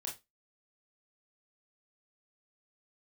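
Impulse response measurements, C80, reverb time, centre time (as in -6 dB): 19.0 dB, 0.20 s, 23 ms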